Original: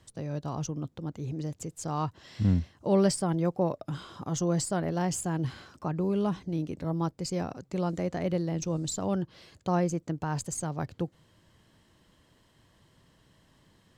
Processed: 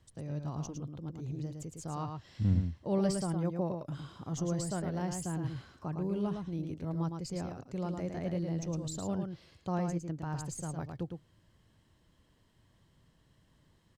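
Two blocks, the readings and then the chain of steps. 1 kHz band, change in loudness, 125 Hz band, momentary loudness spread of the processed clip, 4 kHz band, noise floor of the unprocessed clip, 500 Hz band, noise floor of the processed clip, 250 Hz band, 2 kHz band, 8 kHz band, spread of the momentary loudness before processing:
-7.0 dB, -5.0 dB, -3.5 dB, 10 LU, -7.5 dB, -65 dBFS, -7.0 dB, -68 dBFS, -5.0 dB, -7.5 dB, -7.5 dB, 10 LU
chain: bass shelf 140 Hz +8 dB; delay 109 ms -5.5 dB; trim -8.5 dB

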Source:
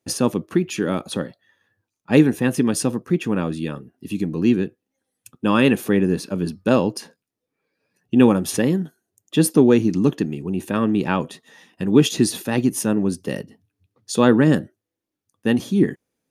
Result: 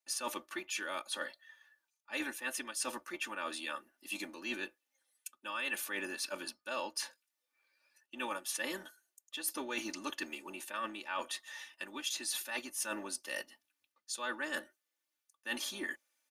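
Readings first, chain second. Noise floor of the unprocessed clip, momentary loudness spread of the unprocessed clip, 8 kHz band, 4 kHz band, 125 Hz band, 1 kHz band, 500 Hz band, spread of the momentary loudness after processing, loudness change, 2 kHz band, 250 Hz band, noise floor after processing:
-83 dBFS, 13 LU, -9.5 dB, -8.5 dB, under -40 dB, -13.0 dB, -24.0 dB, 9 LU, -19.0 dB, -8.5 dB, -29.0 dB, under -85 dBFS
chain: octave divider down 2 oct, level -4 dB; high-pass 1.2 kHz 12 dB/octave; comb 3.4 ms, depth 95%; reverse; compression 6:1, threshold -36 dBFS, peak gain reduction 18 dB; reverse

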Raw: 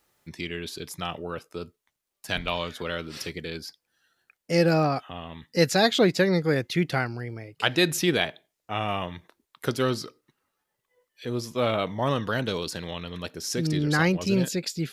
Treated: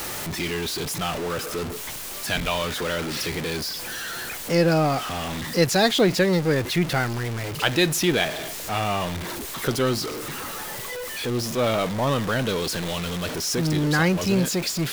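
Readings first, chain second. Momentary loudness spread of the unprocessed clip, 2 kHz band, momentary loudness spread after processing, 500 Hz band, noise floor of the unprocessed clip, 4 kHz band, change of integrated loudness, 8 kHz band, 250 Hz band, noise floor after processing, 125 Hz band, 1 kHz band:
16 LU, +3.0 dB, 10 LU, +2.5 dB, -82 dBFS, +4.0 dB, +2.5 dB, +7.5 dB, +2.5 dB, -34 dBFS, +3.5 dB, +3.5 dB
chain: jump at every zero crossing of -25.5 dBFS

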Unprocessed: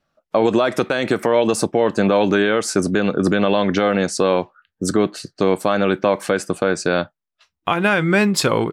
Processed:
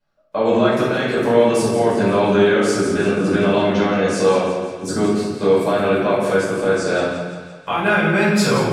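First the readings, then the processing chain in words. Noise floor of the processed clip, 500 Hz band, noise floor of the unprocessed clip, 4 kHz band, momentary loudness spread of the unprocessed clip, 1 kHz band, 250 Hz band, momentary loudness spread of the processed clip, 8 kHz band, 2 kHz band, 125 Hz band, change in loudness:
-38 dBFS, +2.0 dB, -82 dBFS, -1.0 dB, 7 LU, +1.0 dB, +0.5 dB, 7 LU, -2.0 dB, +1.0 dB, +1.5 dB, +1.0 dB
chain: on a send: thinning echo 171 ms, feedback 56%, high-pass 340 Hz, level -10 dB; on the sum: simulated room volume 380 m³, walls mixed, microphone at 5 m; trim -12.5 dB

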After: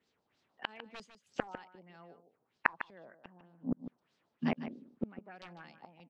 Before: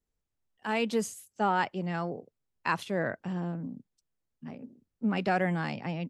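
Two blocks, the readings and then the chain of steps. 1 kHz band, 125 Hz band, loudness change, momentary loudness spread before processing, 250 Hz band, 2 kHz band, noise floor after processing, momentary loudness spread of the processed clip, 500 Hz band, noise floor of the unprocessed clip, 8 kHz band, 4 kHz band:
-12.0 dB, -13.0 dB, -8.5 dB, 17 LU, -8.0 dB, -5.5 dB, -81 dBFS, 21 LU, -13.0 dB, -84 dBFS, under -20 dB, -8.5 dB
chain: high-pass 190 Hz 12 dB/octave; random-step tremolo; integer overflow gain 23 dB; inverted gate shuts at -36 dBFS, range -36 dB; LFO low-pass sine 3.2 Hz 780–4800 Hz; on a send: delay 151 ms -11.5 dB; on the sum: trim +16 dB

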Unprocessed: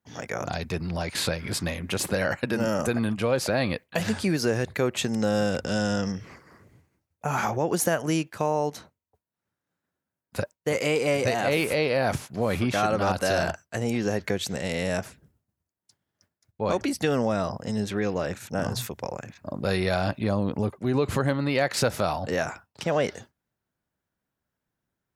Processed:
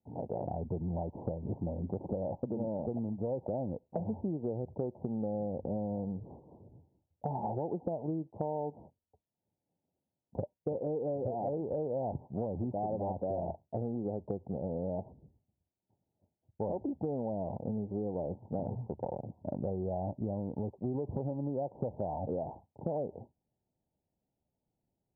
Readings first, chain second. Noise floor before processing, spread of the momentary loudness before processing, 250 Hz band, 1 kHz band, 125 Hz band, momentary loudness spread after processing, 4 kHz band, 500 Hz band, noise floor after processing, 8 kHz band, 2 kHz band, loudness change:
under -85 dBFS, 8 LU, -8.5 dB, -10.5 dB, -8.0 dB, 5 LU, under -40 dB, -9.0 dB, under -85 dBFS, under -40 dB, under -40 dB, -10.0 dB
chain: steep low-pass 910 Hz 96 dB/octave; compression, threshold -32 dBFS, peak gain reduction 12.5 dB

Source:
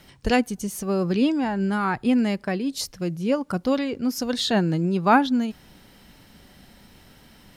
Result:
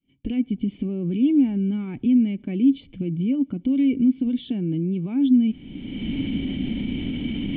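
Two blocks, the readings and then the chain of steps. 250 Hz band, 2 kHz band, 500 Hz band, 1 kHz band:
+4.0 dB, under -10 dB, -9.0 dB, under -25 dB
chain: recorder AGC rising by 31 dB/s; expander -37 dBFS; peak limiter -16.5 dBFS, peak gain reduction 11.5 dB; cascade formant filter i; trim +8 dB

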